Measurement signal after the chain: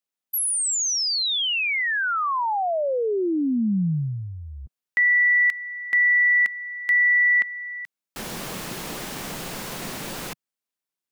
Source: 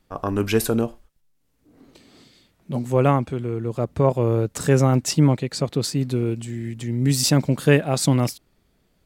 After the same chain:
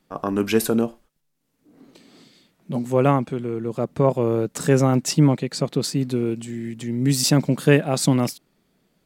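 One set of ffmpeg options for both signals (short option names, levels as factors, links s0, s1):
-af "lowshelf=f=120:t=q:w=1.5:g=-10"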